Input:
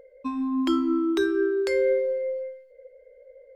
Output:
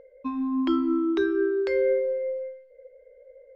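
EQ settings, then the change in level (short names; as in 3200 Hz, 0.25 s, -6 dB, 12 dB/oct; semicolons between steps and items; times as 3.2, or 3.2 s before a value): air absorption 210 m; 0.0 dB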